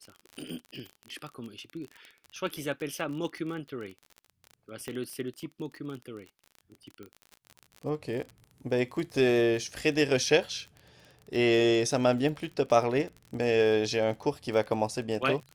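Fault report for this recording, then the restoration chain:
crackle 36/s -36 dBFS
4.88 pop -23 dBFS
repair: de-click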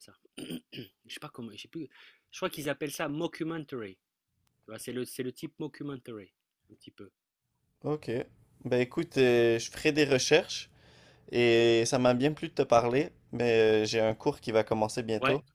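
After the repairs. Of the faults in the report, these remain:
4.88 pop

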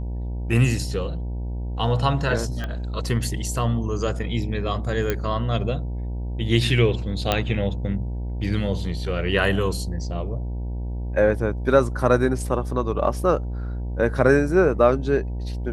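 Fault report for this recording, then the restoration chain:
buzz 60 Hz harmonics 16 -28 dBFS
2.64 pop -17 dBFS
5.1 pop -9 dBFS
7.32 pop -6 dBFS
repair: de-click; de-hum 60 Hz, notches 16

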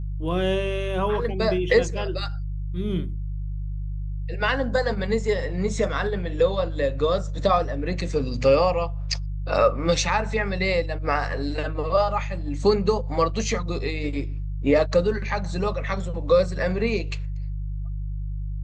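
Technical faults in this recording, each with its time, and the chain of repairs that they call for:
hum 50 Hz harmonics 3 -29 dBFS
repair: de-hum 50 Hz, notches 3

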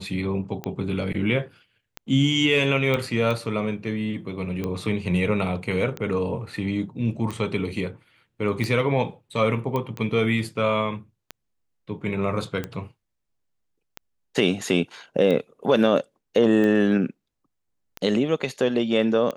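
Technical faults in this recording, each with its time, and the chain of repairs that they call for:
tick 45 rpm -16 dBFS
2.94 pop -12 dBFS
9.76 pop -15 dBFS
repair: de-click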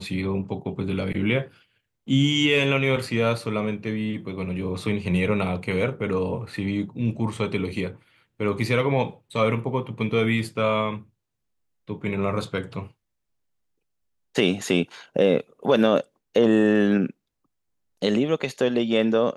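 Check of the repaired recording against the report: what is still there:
none

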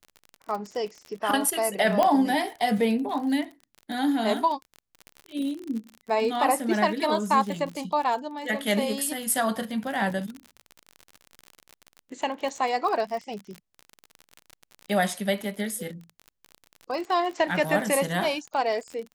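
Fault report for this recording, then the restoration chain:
crackle 41/s -32 dBFS
2.03 pop -10 dBFS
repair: de-click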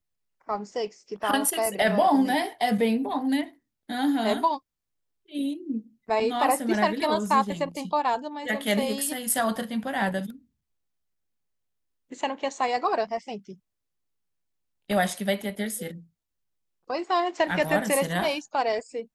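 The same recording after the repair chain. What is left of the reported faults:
none

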